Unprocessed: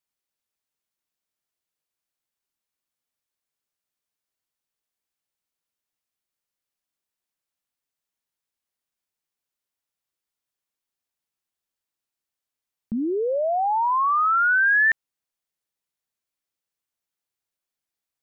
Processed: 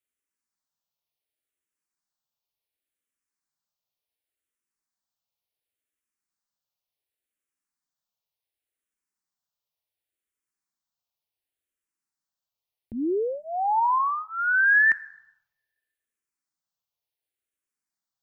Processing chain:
on a send at −14.5 dB: Chebyshev band-stop filter 170–810 Hz, order 3 + convolution reverb RT60 1.1 s, pre-delay 4 ms
on the sum: frequency shifter mixed with the dry sound −0.69 Hz

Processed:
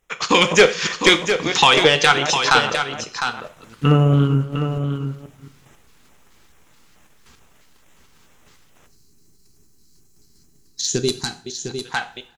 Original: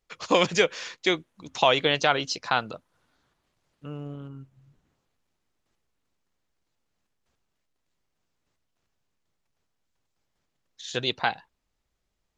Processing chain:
delay that plays each chunk backwards 217 ms, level −13 dB
low-shelf EQ 480 Hz −4 dB
in parallel at +0.5 dB: downward compressor, threshold −35 dBFS, peak gain reduction 18 dB
on the sum: transient designer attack +1 dB, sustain −7 dB
automatic gain control gain up to 13 dB
auto-filter notch square 2.3 Hz 620–4,500 Hz
sine wavefolder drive 6 dB, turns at −2 dBFS
on a send: single-tap delay 705 ms −8 dB
on the sum: gain on a spectral selection 0:08.86–0:11.82, 450–3,900 Hz −17 dB
coupled-rooms reverb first 0.39 s, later 1.5 s, from −24 dB, DRR 8.5 dB
level −2.5 dB

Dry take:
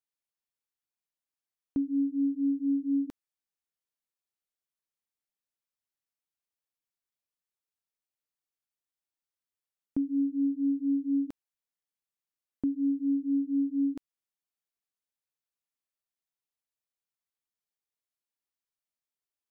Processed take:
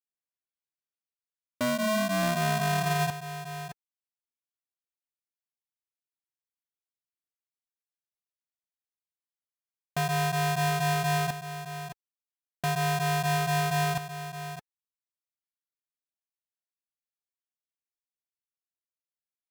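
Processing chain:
turntable start at the beginning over 2.48 s
leveller curve on the samples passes 5
notch comb filter 440 Hz
single-tap delay 616 ms −10.5 dB
ring modulator with a square carrier 430 Hz
level −3 dB

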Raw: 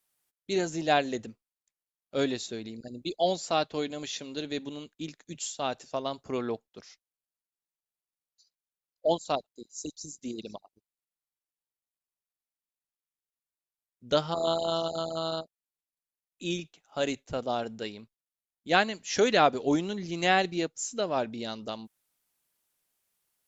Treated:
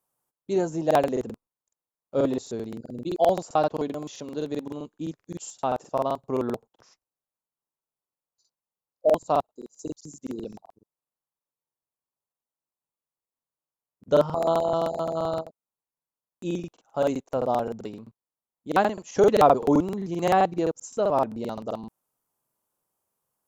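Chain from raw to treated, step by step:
graphic EQ with 10 bands 125 Hz +8 dB, 250 Hz +4 dB, 500 Hz +6 dB, 1,000 Hz +10 dB, 2,000 Hz −7 dB, 4,000 Hz −7 dB
regular buffer underruns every 0.13 s, samples 2,048, repeat, from 0:00.86
level −2.5 dB

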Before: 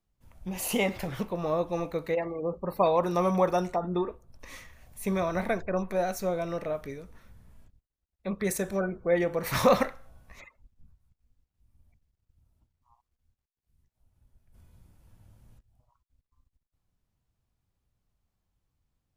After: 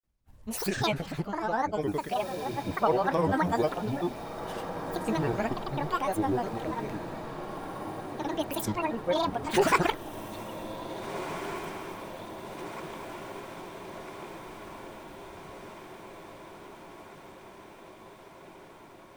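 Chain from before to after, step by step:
granular cloud, pitch spread up and down by 12 semitones
on a send: feedback delay with all-pass diffusion 1,749 ms, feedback 69%, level −10 dB

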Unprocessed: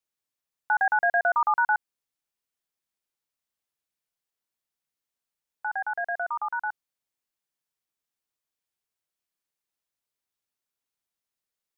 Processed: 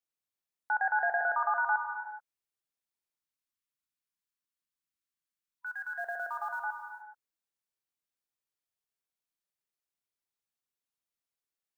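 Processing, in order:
0:03.18–0:05.99: gain on a spectral selection 360–980 Hz −21 dB
0:05.66–0:06.63: floating-point word with a short mantissa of 4 bits
reverb whose tail is shaped and stops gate 450 ms flat, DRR 4.5 dB
level −7 dB

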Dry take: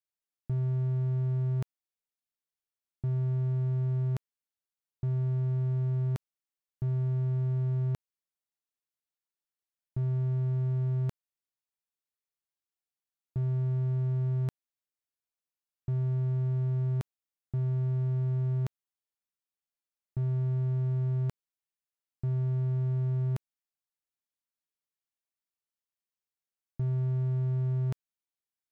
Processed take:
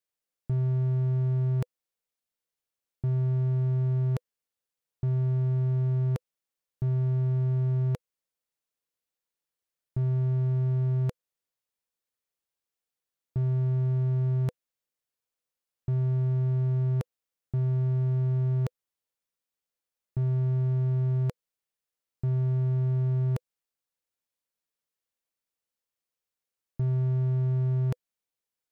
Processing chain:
parametric band 500 Hz +8 dB 0.23 octaves
level +3 dB

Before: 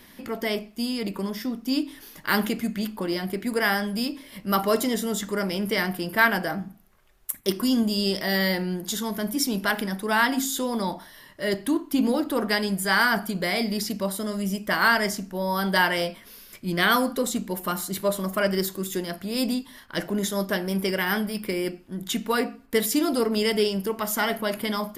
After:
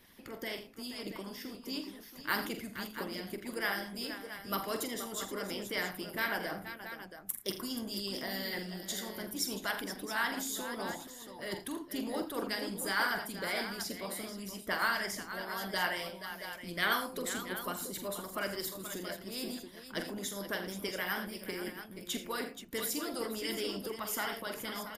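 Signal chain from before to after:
multi-tap delay 45/82/111/478/677 ms −7/−10/−16.5/−11.5/−11.5 dB
harmonic and percussive parts rebalanced harmonic −11 dB
level −7 dB

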